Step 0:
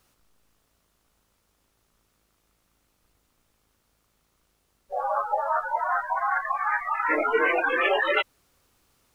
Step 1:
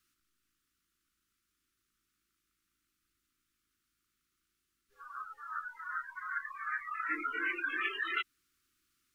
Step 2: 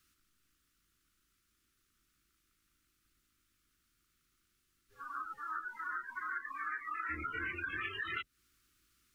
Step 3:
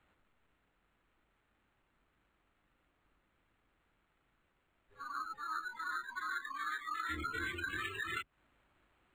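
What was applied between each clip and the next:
elliptic band-stop 340–1300 Hz, stop band 80 dB; tone controls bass -10 dB, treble -1 dB; gain -8.5 dB
octaver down 2 oct, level +3 dB; compressor 5:1, threshold -41 dBFS, peak gain reduction 11 dB; gain +4 dB
decimation joined by straight lines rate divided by 8×; gain +2 dB

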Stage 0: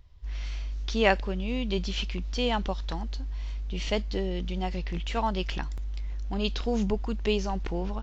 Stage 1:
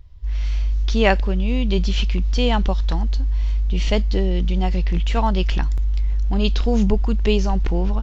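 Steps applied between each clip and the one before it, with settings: low shelf 160 Hz +9 dB; AGC gain up to 3 dB; gain +2.5 dB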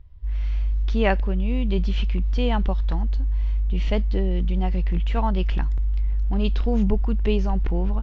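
tone controls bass +2 dB, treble -14 dB; gain -4.5 dB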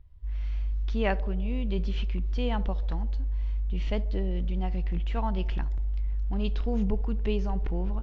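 narrowing echo 69 ms, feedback 77%, band-pass 500 Hz, level -17 dB; gain -6.5 dB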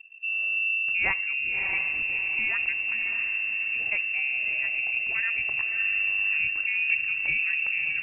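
inverted band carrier 2700 Hz; diffused feedback echo 0.631 s, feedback 44%, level -5.5 dB

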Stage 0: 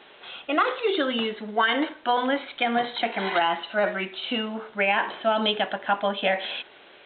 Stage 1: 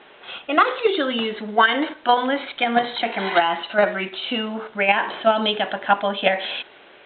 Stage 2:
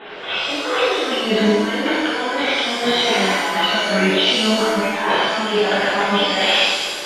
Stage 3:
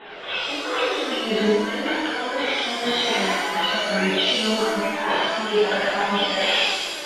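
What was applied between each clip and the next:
low-pass opened by the level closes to 2800 Hz, open at -21.5 dBFS; in parallel at 0 dB: level quantiser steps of 21 dB; on the sum: gain +1.5 dB
negative-ratio compressor -29 dBFS, ratio -1; shimmer reverb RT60 1.3 s, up +7 st, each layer -8 dB, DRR -8 dB
flange 0.49 Hz, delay 1 ms, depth 2.6 ms, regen +68%

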